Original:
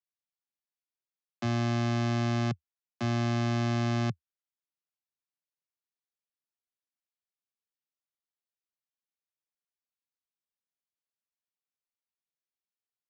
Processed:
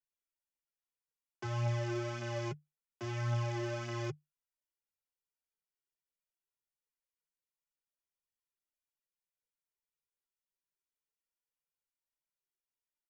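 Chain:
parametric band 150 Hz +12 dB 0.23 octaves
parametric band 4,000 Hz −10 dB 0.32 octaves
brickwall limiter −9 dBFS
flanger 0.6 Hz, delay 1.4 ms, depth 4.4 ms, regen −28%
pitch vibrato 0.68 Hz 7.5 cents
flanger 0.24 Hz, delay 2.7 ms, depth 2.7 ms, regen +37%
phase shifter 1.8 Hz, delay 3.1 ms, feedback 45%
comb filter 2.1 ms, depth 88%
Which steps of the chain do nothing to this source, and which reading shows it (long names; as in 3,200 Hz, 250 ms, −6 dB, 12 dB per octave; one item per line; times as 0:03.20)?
brickwall limiter −9 dBFS: peak of its input −19.5 dBFS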